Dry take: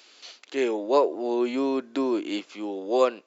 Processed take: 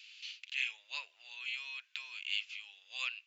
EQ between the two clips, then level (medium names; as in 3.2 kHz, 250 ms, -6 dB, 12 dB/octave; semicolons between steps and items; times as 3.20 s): ladder high-pass 2.4 kHz, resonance 65%; treble shelf 3.5 kHz -7 dB; +7.5 dB